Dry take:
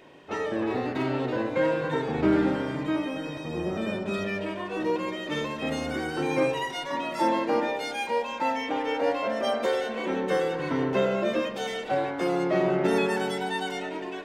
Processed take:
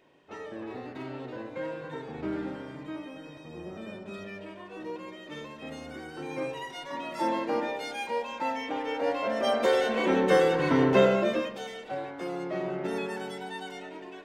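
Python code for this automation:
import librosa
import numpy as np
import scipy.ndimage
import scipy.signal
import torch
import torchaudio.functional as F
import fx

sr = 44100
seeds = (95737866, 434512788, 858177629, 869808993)

y = fx.gain(x, sr, db=fx.line((6.11, -11.0), (7.31, -4.0), (8.95, -4.0), (9.93, 4.0), (11.04, 4.0), (11.72, -8.5)))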